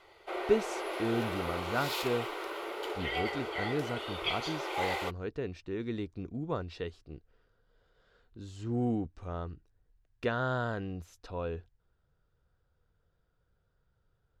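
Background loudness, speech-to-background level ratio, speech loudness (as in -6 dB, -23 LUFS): -36.0 LUFS, 0.0 dB, -36.0 LUFS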